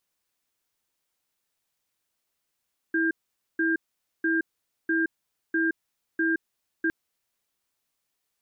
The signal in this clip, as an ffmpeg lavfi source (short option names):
-f lavfi -i "aevalsrc='0.0631*(sin(2*PI*327*t)+sin(2*PI*1600*t))*clip(min(mod(t,0.65),0.17-mod(t,0.65))/0.005,0,1)':d=3.96:s=44100"